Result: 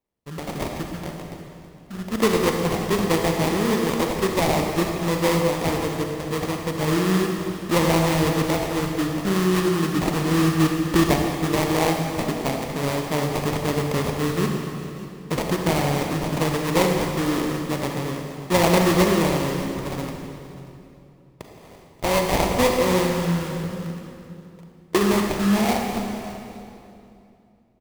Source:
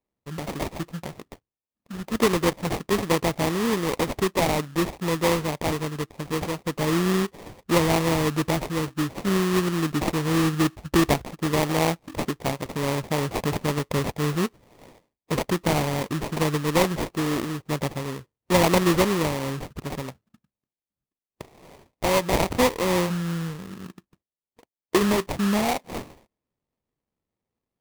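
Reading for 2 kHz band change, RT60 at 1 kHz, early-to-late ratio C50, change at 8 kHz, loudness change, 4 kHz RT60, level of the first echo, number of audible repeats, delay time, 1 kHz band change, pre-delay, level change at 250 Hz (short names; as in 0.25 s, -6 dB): +2.0 dB, 2.6 s, 2.5 dB, +2.0 dB, +2.5 dB, 2.3 s, -19.0 dB, 1, 0.586 s, +2.5 dB, 33 ms, +3.0 dB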